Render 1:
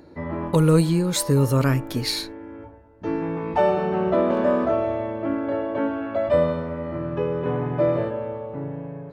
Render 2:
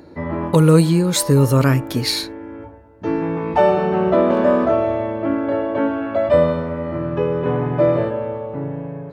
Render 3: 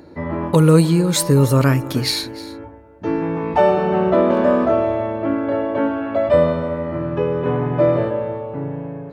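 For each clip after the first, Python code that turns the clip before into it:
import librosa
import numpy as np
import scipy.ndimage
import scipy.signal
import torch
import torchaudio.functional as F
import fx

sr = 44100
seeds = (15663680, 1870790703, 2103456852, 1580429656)

y1 = scipy.signal.sosfilt(scipy.signal.butter(2, 41.0, 'highpass', fs=sr, output='sos'), x)
y1 = y1 * librosa.db_to_amplitude(5.0)
y2 = y1 + 10.0 ** (-18.0 / 20.0) * np.pad(y1, (int(306 * sr / 1000.0), 0))[:len(y1)]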